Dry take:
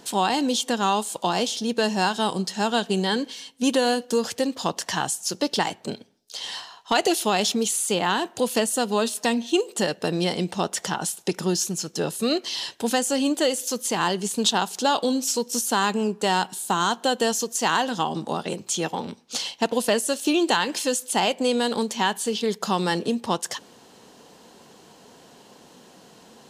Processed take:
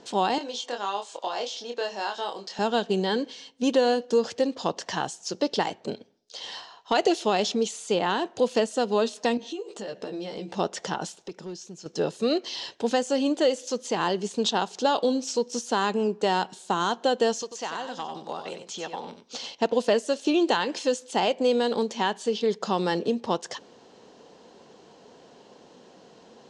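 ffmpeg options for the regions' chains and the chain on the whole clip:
-filter_complex "[0:a]asettb=1/sr,asplit=3[a][b][c];[a]atrim=end=0.384[d];[b]atrim=start=0.38:end=2.59,asetpts=PTS-STARTPTS,afade=t=in:d=0.004:c=qsin,afade=t=out:st=2.206:d=0.004:c=qsin,acompressor=threshold=-29dB:ratio=1.5:attack=3.2:release=140:knee=1:detection=peak,highpass=540,lowpass=7.5k,asplit=2[e][f];[f]adelay=25,volume=-4.5dB[g];[e][g]amix=inputs=2:normalize=0,atrim=end_sample=97461[h];[c]atrim=start=2.586[i];[d][h]acrossfade=d=0.004:c1=hsin:c2=qsin[j];[j][i]acrossfade=d=0.004:c1=qsin:c2=hsin,asettb=1/sr,asplit=3[k][l][m];[k]atrim=end=9.374[n];[l]atrim=start=9.37:end=10.55,asetpts=PTS-STARTPTS,afade=t=in:d=0.004:c=qsin,afade=t=out:st=1.176:d=0.004:c=qsin,asplit=2[o][p];[p]adelay=15,volume=-4dB[q];[o][q]amix=inputs=2:normalize=0,atrim=end_sample=52038,acompressor=threshold=-29dB:ratio=16:attack=3.2:release=140:knee=1:detection=peak[r];[m]atrim=start=10.546[s];[n][r]acrossfade=d=0.004:c1=hsin:c2=qsin[t];[t][s]acrossfade=d=0.004:c1=qsin:c2=hsin,asettb=1/sr,asplit=3[u][v][w];[u]atrim=end=11.224[x];[v]atrim=start=11.22:end=11.86,asetpts=PTS-STARTPTS,afade=t=in:d=0.004:c=qsin,afade=t=out:st=0.636:d=0.004:c=qsin,bandreject=f=1.2k:w=16,acompressor=threshold=-52dB:ratio=1.5:attack=3.2:release=140:knee=1:detection=peak,asoftclip=type=hard:threshold=-28dB[y];[w]atrim=start=11.856[z];[x][y]acrossfade=d=0.004:c1=hsin:c2=qsin[aa];[aa][z]acrossfade=d=0.004:c1=qsin:c2=hsin,asettb=1/sr,asplit=3[ab][ac][ad];[ab]atrim=end=17.424[ae];[ac]atrim=start=17.42:end=19.55,asetpts=PTS-STARTPTS,afade=t=in:d=0.004:c=qsin,afade=t=out:st=2.126:d=0.004:c=qsin,acrossover=split=620|6400[af][ag][ah];[af]acompressor=threshold=-41dB:ratio=4[ai];[ag]acompressor=threshold=-29dB:ratio=4[aj];[ah]acompressor=threshold=-40dB:ratio=4[ak];[ai][aj][ak]amix=inputs=3:normalize=0,asoftclip=type=hard:threshold=-20dB,aecho=1:1:92:0.398,atrim=end_sample=93933[al];[ad]atrim=start=19.546[am];[ae][al]acrossfade=d=0.004:c1=hsin:c2=qsin[an];[an][am]acrossfade=d=0.004:c1=qsin:c2=hsin,lowpass=f=6.6k:w=0.5412,lowpass=f=6.6k:w=1.3066,equalizer=f=480:t=o:w=1.4:g=6.5,volume=-5dB"

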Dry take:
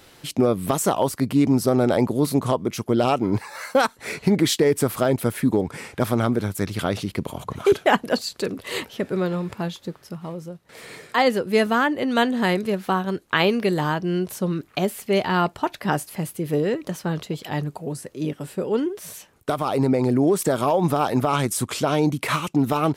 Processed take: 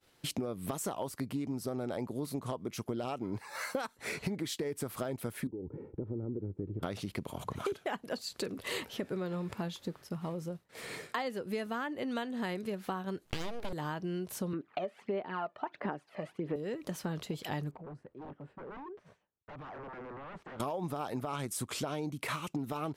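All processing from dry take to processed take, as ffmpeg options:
-filter_complex "[0:a]asettb=1/sr,asplit=3[a][b][c];[a]atrim=end=5.474[d];[b]atrim=start=5.47:end=6.83,asetpts=PTS-STARTPTS,afade=t=in:d=0.004:c=qsin,afade=t=out:st=1.356:d=0.004:c=qsin,aecho=1:1:2.2:0.49,atrim=end_sample=59976,acompressor=threshold=-32dB:ratio=2.5:attack=3.2:release=140:knee=1:detection=peak,lowpass=f=320:t=q:w=1.9[e];[c]atrim=start=6.826[f];[d][e]acrossfade=d=0.004:c1=hsin:c2=qsin[g];[g][f]acrossfade=d=0.004:c1=qsin:c2=hsin,asettb=1/sr,asplit=3[h][i][j];[h]atrim=end=13.254[k];[i]atrim=start=13.25:end=13.73,asetpts=PTS-STARTPTS,afade=t=in:d=0.004:c=qsin,afade=t=out:st=0.476:d=0.004:c=qsin,lowshelf=f=270:g=7.5,aeval=exprs='abs(val(0))':c=same[l];[j]atrim=start=13.726[m];[k][l]acrossfade=d=0.004:c1=hsin:c2=qsin[n];[n][m]acrossfade=d=0.004:c1=qsin:c2=hsin,asettb=1/sr,asplit=3[o][p][q];[o]atrim=end=14.534[r];[p]atrim=start=14.53:end=16.56,asetpts=PTS-STARTPTS,afade=t=in:d=0.004:c=qsin,afade=t=out:st=2.026:d=0.004:c=qsin,aphaser=in_gain=1:out_gain=1:delay=1.7:decay=0.6:speed=1.5:type=sinusoidal,highpass=270,lowpass=2.1k[s];[q]atrim=start=16.556[t];[r][s]acrossfade=d=0.004:c1=hsin:c2=qsin[u];[u][t]acrossfade=d=0.004:c1=qsin:c2=hsin,asettb=1/sr,asplit=3[v][w][x];[v]atrim=end=17.714[y];[w]atrim=start=17.71:end=20.6,asetpts=PTS-STARTPTS,afade=t=in:d=0.004:c=qsin,afade=t=out:st=2.886:d=0.004:c=qsin,aeval=exprs='0.0531*(abs(mod(val(0)/0.0531+3,4)-2)-1)':c=same,lowpass=1.5k,acompressor=threshold=-40dB:ratio=6:attack=3.2:release=140:knee=1:detection=peak[z];[x]atrim=start=20.596[aa];[y][z]acrossfade=d=0.004:c1=hsin:c2=qsin[ab];[ab][aa]acrossfade=d=0.004:c1=qsin:c2=hsin,agate=range=-33dB:threshold=-40dB:ratio=3:detection=peak,acompressor=threshold=-31dB:ratio=8,volume=-2.5dB"

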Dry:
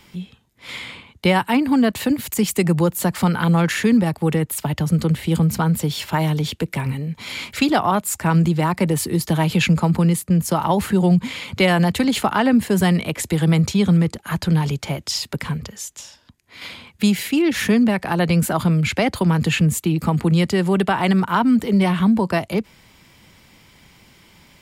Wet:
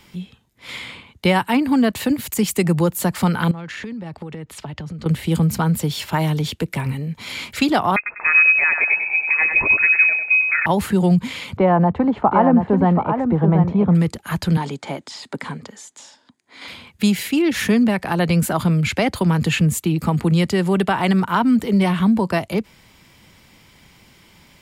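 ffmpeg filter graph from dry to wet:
-filter_complex "[0:a]asettb=1/sr,asplit=3[a][b][c];[a]atrim=end=3.514[d];[b]atrim=start=3.51:end=5.06,asetpts=PTS-STARTPTS,afade=t=in:d=0.004:c=qsin,afade=t=out:st=1.546:d=0.004:c=qsin,lowpass=5k,acompressor=threshold=-27dB:ratio=16:attack=3.2:release=140:knee=1:detection=peak[e];[c]atrim=start=5.056[f];[d][e]acrossfade=d=0.004:c1=hsin:c2=qsin[g];[g][f]acrossfade=d=0.004:c1=qsin:c2=hsin,asettb=1/sr,asplit=3[h][i][j];[h]atrim=end=7.964[k];[i]atrim=start=7.96:end=10.66,asetpts=PTS-STARTPTS,afade=t=in:d=0.004:c=qsin,afade=t=out:st=2.696:d=0.004:c=qsin,aecho=1:1:98|196|294|392:0.501|0.16|0.0513|0.0164,atrim=end_sample=119070,lowpass=f=2.3k:t=q:w=0.5098,lowpass=f=2.3k:t=q:w=0.6013,lowpass=f=2.3k:t=q:w=0.9,lowpass=f=2.3k:t=q:w=2.563,afreqshift=-2700[l];[j]atrim=start=10.656[m];[k][l]acrossfade=d=0.004:c1=hsin:c2=qsin[n];[n][m]acrossfade=d=0.004:c1=qsin:c2=hsin,asettb=1/sr,asplit=3[o][p][q];[o]atrim=end=11.574[r];[p]atrim=start=11.57:end=13.95,asetpts=PTS-STARTPTS,afade=t=in:d=0.004:c=qsin,afade=t=out:st=2.376:d=0.004:c=qsin,lowpass=f=930:t=q:w=1.9,aecho=1:1:732:0.473,atrim=end_sample=104958[s];[q]atrim=start=13.946[t];[r][s]acrossfade=d=0.004:c1=hsin:c2=qsin[u];[u][t]acrossfade=d=0.004:c1=qsin:c2=hsin,asettb=1/sr,asplit=3[v][w][x];[v]atrim=end=14.574[y];[w]atrim=start=14.57:end=16.68,asetpts=PTS-STARTPTS,afade=t=in:d=0.004:c=qsin,afade=t=out:st=2.106:d=0.004:c=qsin,acrossover=split=3100[z][aa];[aa]acompressor=threshold=-34dB:ratio=4:attack=1:release=60[ab];[z][ab]amix=inputs=2:normalize=0,highpass=240,equalizer=f=260:t=q:w=4:g=6,equalizer=f=840:t=q:w=4:g=4,equalizer=f=2.7k:t=q:w=4:g=-6,equalizer=f=5.6k:t=q:w=4:g=-5,lowpass=f=9.2k:w=0.5412,lowpass=f=9.2k:w=1.3066[ac];[x]atrim=start=16.676[ad];[y][ac]acrossfade=d=0.004:c1=hsin:c2=qsin[ae];[ae][ad]acrossfade=d=0.004:c1=qsin:c2=hsin"

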